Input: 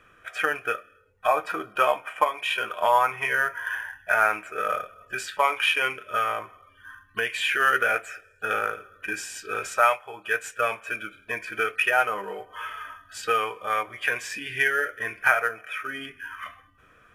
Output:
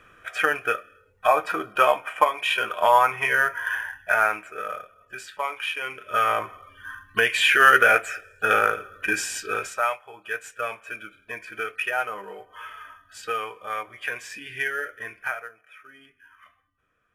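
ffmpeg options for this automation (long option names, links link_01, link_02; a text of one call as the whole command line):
ffmpeg -i in.wav -af "volume=16dB,afade=type=out:start_time=3.87:duration=0.87:silence=0.334965,afade=type=in:start_time=5.86:duration=0.56:silence=0.223872,afade=type=out:start_time=9.35:duration=0.41:silence=0.281838,afade=type=out:start_time=14.99:duration=0.53:silence=0.266073" out.wav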